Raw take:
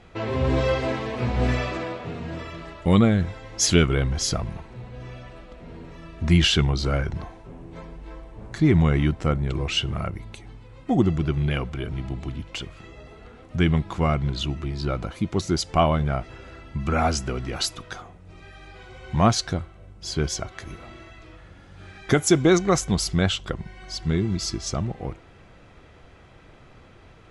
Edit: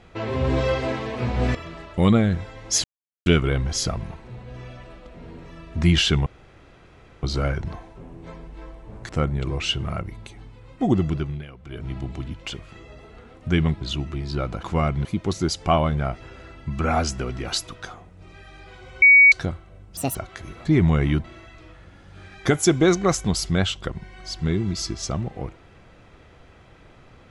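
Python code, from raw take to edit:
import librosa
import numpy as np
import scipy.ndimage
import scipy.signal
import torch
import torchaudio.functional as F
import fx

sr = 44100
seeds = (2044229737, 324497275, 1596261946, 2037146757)

y = fx.edit(x, sr, fx.cut(start_s=1.55, length_s=0.88),
    fx.insert_silence(at_s=3.72, length_s=0.42),
    fx.insert_room_tone(at_s=6.72, length_s=0.97),
    fx.move(start_s=8.58, length_s=0.59, to_s=20.88),
    fx.fade_down_up(start_s=11.19, length_s=0.82, db=-16.0, fade_s=0.35),
    fx.move(start_s=13.89, length_s=0.42, to_s=15.13),
    fx.bleep(start_s=19.1, length_s=0.3, hz=2250.0, db=-8.0),
    fx.speed_span(start_s=20.05, length_s=0.33, speed=1.8), tone=tone)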